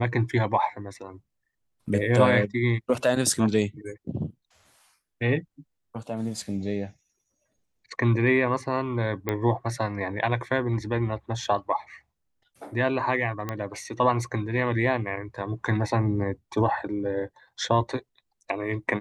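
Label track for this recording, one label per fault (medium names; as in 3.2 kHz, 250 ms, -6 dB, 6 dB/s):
9.290000	9.290000	pop -13 dBFS
13.490000	13.490000	pop -16 dBFS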